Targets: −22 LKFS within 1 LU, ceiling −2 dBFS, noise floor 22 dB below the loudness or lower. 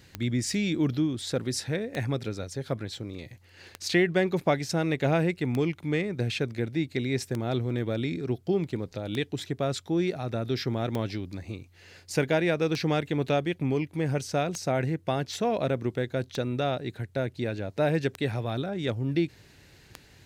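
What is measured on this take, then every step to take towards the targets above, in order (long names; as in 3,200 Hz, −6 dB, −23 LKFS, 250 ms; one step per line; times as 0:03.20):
number of clicks 12; integrated loudness −29.0 LKFS; sample peak −11.0 dBFS; target loudness −22.0 LKFS
→ click removal
level +7 dB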